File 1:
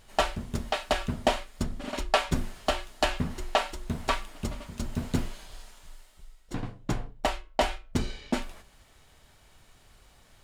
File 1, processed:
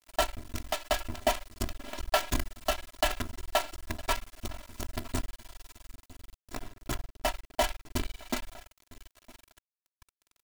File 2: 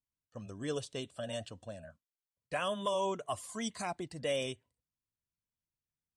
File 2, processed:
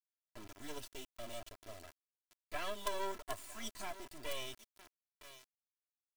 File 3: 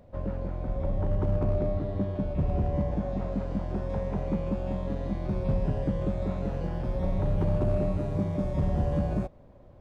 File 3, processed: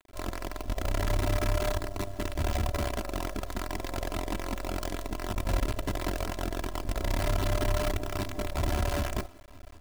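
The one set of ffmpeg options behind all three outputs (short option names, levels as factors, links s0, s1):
-filter_complex "[0:a]equalizer=f=340:w=1.7:g=-7,asplit=2[s0][s1];[s1]aecho=0:1:959|1918:0.133|0.0213[s2];[s0][s2]amix=inputs=2:normalize=0,acrusher=bits=5:dc=4:mix=0:aa=0.000001,aecho=1:1:3:0.77,volume=0.596"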